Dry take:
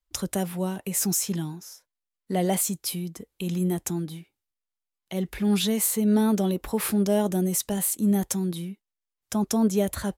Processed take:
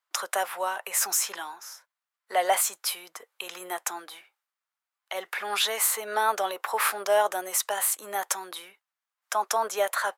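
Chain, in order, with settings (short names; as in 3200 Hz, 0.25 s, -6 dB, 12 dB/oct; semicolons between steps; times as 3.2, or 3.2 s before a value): HPF 560 Hz 24 dB/oct; bell 1300 Hz +13 dB 1.8 oct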